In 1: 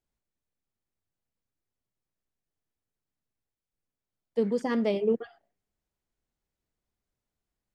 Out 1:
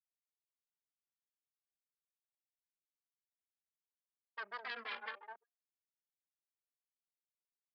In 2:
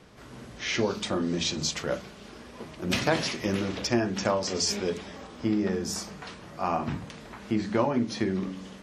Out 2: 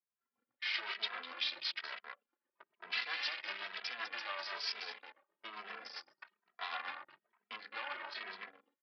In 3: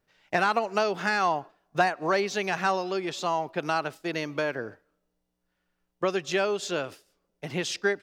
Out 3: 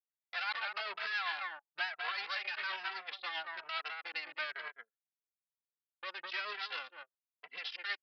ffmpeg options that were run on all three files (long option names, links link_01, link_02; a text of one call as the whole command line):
ffmpeg -i in.wav -filter_complex "[0:a]aemphasis=mode=reproduction:type=cd,asplit=2[link_01][link_02];[link_02]adelay=204.1,volume=-7dB,highshelf=frequency=4000:gain=-4.59[link_03];[link_01][link_03]amix=inputs=2:normalize=0,alimiter=limit=-19dB:level=0:latency=1:release=35,aeval=exprs='0.112*(cos(1*acos(clip(val(0)/0.112,-1,1)))-cos(1*PI/2))+0.00398*(cos(3*acos(clip(val(0)/0.112,-1,1)))-cos(3*PI/2))+0.0316*(cos(4*acos(clip(val(0)/0.112,-1,1)))-cos(4*PI/2))+0.00251*(cos(8*acos(clip(val(0)/0.112,-1,1)))-cos(8*PI/2))':channel_layout=same,tremolo=f=7.7:d=0.39,anlmdn=2.51,asuperpass=centerf=3500:order=4:qfactor=0.58,aresample=11025,aresample=44100,asplit=2[link_04][link_05];[link_05]adelay=2.7,afreqshift=1.1[link_06];[link_04][link_06]amix=inputs=2:normalize=1,volume=2dB" out.wav